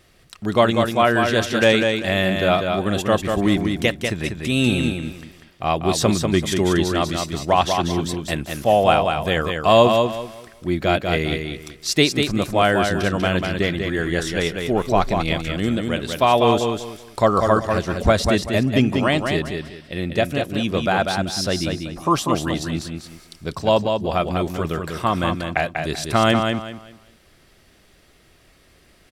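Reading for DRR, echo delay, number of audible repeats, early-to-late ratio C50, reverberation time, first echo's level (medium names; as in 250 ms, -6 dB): no reverb, 193 ms, 3, no reverb, no reverb, -5.0 dB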